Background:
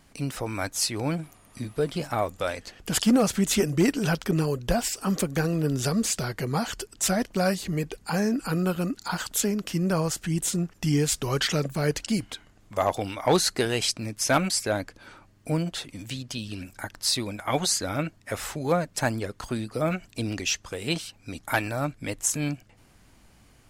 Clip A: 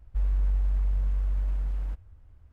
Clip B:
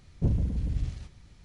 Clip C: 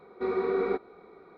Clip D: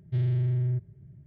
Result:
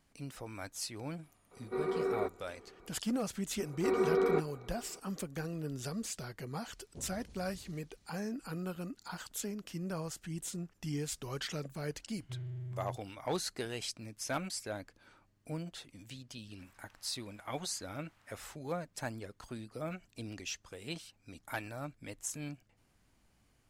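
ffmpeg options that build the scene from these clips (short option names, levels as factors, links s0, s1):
-filter_complex "[3:a]asplit=2[s0][s1];[0:a]volume=0.2[s2];[s0]bandreject=f=3300:w=12[s3];[2:a]bass=f=250:g=-14,treble=f=4000:g=8[s4];[1:a]highpass=1200[s5];[s3]atrim=end=1.37,asetpts=PTS-STARTPTS,volume=0.501,afade=t=in:d=0.004:c=hsin,afade=t=out:st=1.366:d=0.004:c=hsin,adelay=1510[s6];[s1]atrim=end=1.37,asetpts=PTS-STARTPTS,volume=0.841,afade=t=in:d=0.004:c=hsin,afade=t=out:st=1.366:d=0.004:c=hsin,adelay=3630[s7];[s4]atrim=end=1.44,asetpts=PTS-STARTPTS,volume=0.224,afade=t=in:d=0.004:c=hsin,afade=t=out:st=1.436:d=0.004:c=hsin,adelay=6730[s8];[4:a]atrim=end=1.26,asetpts=PTS-STARTPTS,volume=0.158,afade=t=in:d=0.004:c=hsin,afade=t=out:st=1.256:d=0.004:c=hsin,adelay=12170[s9];[s5]atrim=end=2.52,asetpts=PTS-STARTPTS,volume=0.376,afade=t=in:d=0.004:c=hsin,afade=t=out:st=2.516:d=0.004:c=hsin,adelay=16430[s10];[s2][s6][s7][s8][s9][s10]amix=inputs=6:normalize=0"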